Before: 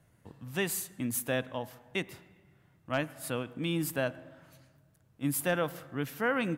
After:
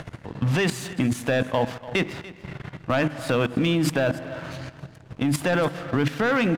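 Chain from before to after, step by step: LPF 4400 Hz 12 dB/oct; notches 50/100/150/200/250/300/350 Hz; in parallel at 0 dB: upward compressor, threshold -32 dBFS; on the sum: sample leveller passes 2; level quantiser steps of 14 dB; on a send: echo 0.29 s -17.5 dB; on the sum: gain +7 dB

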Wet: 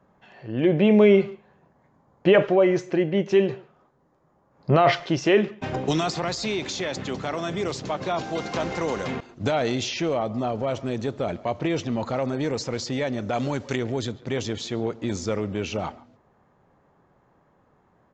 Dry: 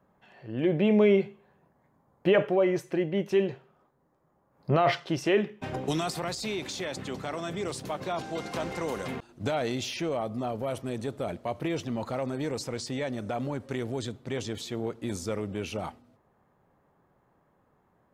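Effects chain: 13.33–13.76 high shelf 2500 Hz +11.5 dB; speakerphone echo 0.14 s, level -20 dB; downsampling 16000 Hz; gain +5.5 dB

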